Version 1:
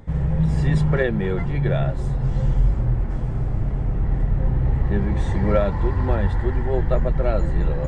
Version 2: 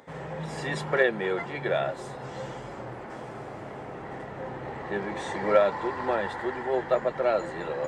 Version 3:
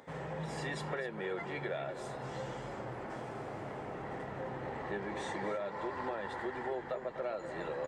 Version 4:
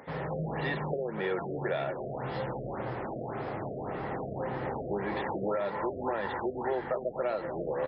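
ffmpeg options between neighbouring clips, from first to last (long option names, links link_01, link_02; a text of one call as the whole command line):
ffmpeg -i in.wav -af "highpass=470,volume=2dB" out.wav
ffmpeg -i in.wav -filter_complex "[0:a]alimiter=limit=-18dB:level=0:latency=1:release=385,acompressor=threshold=-34dB:ratio=2.5,asplit=2[link_01][link_02];[link_02]adelay=250.7,volume=-11dB,highshelf=frequency=4000:gain=-5.64[link_03];[link_01][link_03]amix=inputs=2:normalize=0,volume=-3dB" out.wav
ffmpeg -i in.wav -af "afftfilt=real='re*lt(b*sr/1024,700*pow(5500/700,0.5+0.5*sin(2*PI*1.8*pts/sr)))':imag='im*lt(b*sr/1024,700*pow(5500/700,0.5+0.5*sin(2*PI*1.8*pts/sr)))':win_size=1024:overlap=0.75,volume=6.5dB" out.wav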